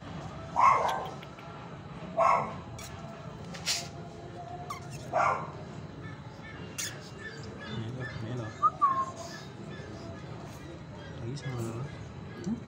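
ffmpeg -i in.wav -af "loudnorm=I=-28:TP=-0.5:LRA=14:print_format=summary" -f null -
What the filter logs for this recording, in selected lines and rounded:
Input Integrated:    -34.0 LUFS
Input True Peak:     -10.1 dBTP
Input LRA:             6.7 LU
Input Threshold:     -44.3 LUFS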